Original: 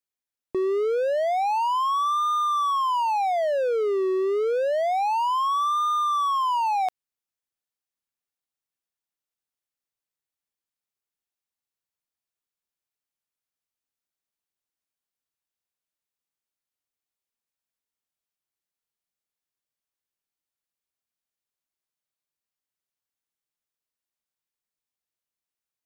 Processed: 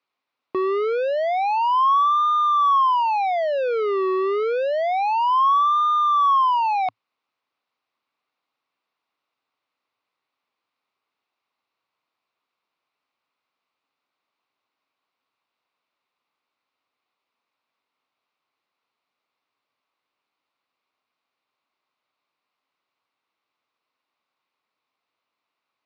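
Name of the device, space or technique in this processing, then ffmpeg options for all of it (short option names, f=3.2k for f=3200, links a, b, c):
overdrive pedal into a guitar cabinet: -filter_complex "[0:a]asplit=2[a][b];[b]highpass=f=720:p=1,volume=24dB,asoftclip=type=tanh:threshold=-18.5dB[c];[a][c]amix=inputs=2:normalize=0,lowpass=f=7.1k:p=1,volume=-6dB,highpass=100,equalizer=f=110:t=q:w=4:g=6,equalizer=f=270:t=q:w=4:g=5,equalizer=f=1.1k:t=q:w=4:g=6,equalizer=f=1.7k:t=q:w=4:g=-9,equalizer=f=3.2k:t=q:w=4:g=-7,lowpass=f=3.7k:w=0.5412,lowpass=f=3.7k:w=1.3066"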